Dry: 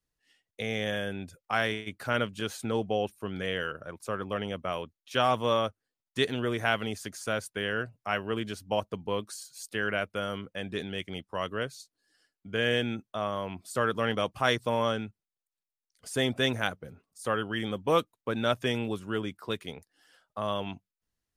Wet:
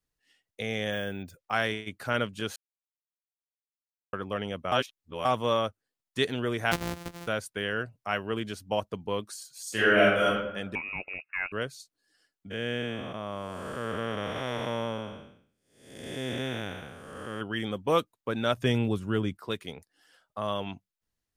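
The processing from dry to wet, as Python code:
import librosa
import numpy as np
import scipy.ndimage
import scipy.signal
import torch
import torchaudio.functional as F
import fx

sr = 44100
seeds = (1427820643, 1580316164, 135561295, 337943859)

y = fx.resample_bad(x, sr, factor=2, down='filtered', up='hold', at=(0.92, 1.51))
y = fx.sample_sort(y, sr, block=256, at=(6.71, 7.26), fade=0.02)
y = fx.reverb_throw(y, sr, start_s=9.62, length_s=0.63, rt60_s=0.97, drr_db=-8.5)
y = fx.freq_invert(y, sr, carrier_hz=2700, at=(10.75, 11.52))
y = fx.spec_blur(y, sr, span_ms=436.0, at=(12.5, 17.4), fade=0.02)
y = fx.low_shelf(y, sr, hz=210.0, db=11.0, at=(18.57, 19.37))
y = fx.edit(y, sr, fx.silence(start_s=2.56, length_s=1.57),
    fx.reverse_span(start_s=4.72, length_s=0.53), tone=tone)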